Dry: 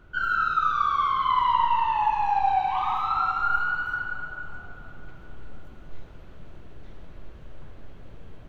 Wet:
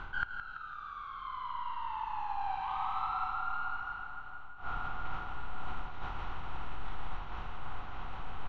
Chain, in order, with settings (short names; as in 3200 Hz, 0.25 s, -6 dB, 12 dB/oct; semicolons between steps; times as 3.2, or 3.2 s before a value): per-bin compression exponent 0.6; Doppler pass-by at 3.04, 10 m/s, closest 5.7 m; low shelf 62 Hz +6 dB; flipped gate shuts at -27 dBFS, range -26 dB; reverse; compressor 12:1, threshold -45 dBFS, peak gain reduction 12.5 dB; reverse; LPF 5300 Hz 12 dB/oct; on a send: feedback echo 0.167 s, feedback 51%, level -9.5 dB; on the sum: gain +14.5 dB